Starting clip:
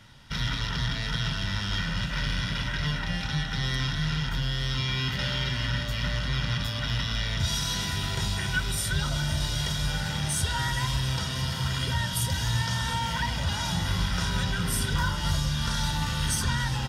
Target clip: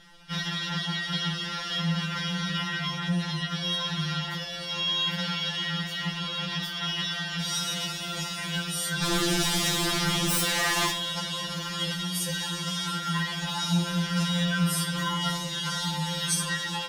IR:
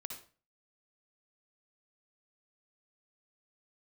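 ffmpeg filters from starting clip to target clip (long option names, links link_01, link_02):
-filter_complex "[0:a]asettb=1/sr,asplit=3[link_01][link_02][link_03];[link_01]atrim=end=9.034[link_04];[link_02]atrim=start=9.03:end=10.91,asetpts=PTS-STARTPTS,afade=type=in:duration=0.004:curve=qsin,afade=type=out:start_time=1.876:duration=0.004:curve=qsin,aeval=exprs='0.178*(cos(1*acos(clip(val(0)/0.178,-1,1)))-cos(1*PI/2))+0.0891*(cos(3*acos(clip(val(0)/0.178,-1,1)))-cos(3*PI/2))+0.0631*(cos(7*acos(clip(val(0)/0.178,-1,1)))-cos(7*PI/2))':channel_layout=same[link_05];[link_03]atrim=start=10.906[link_06];[link_04][link_05]acrossfade=duration=0.004:curve1=hsin:curve2=qsin[link_07];[link_07][link_06]acrossfade=duration=0.004:curve1=qsin:curve2=hsin,asplit=2[link_08][link_09];[1:a]atrim=start_sample=2205[link_10];[link_09][link_10]afir=irnorm=-1:irlink=0,volume=-4.5dB[link_11];[link_08][link_11]amix=inputs=2:normalize=0,afftfilt=real='re*2.83*eq(mod(b,8),0)':imag='im*2.83*eq(mod(b,8),0)':win_size=2048:overlap=0.75"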